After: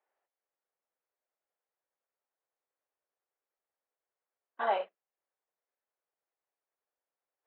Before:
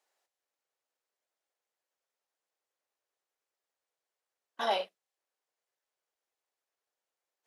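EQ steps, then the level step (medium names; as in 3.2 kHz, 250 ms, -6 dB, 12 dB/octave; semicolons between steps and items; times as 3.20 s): dynamic bell 1.5 kHz, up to +5 dB, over -42 dBFS, Q 0.71; band-pass 280–2500 Hz; distance through air 380 m; 0.0 dB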